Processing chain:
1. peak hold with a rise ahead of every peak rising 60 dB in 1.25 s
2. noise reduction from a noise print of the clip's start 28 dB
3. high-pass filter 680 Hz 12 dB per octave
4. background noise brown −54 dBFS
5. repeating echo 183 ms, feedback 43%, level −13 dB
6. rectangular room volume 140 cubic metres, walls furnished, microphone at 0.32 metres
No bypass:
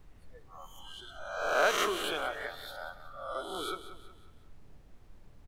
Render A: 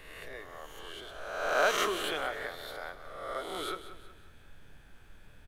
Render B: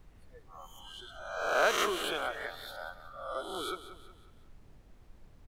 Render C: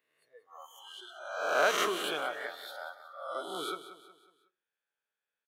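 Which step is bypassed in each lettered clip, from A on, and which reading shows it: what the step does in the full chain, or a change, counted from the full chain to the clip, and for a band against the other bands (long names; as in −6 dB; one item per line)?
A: 2, change in momentary loudness spread −3 LU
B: 6, echo-to-direct ratio −9.5 dB to −12.0 dB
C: 4, 125 Hz band −6.5 dB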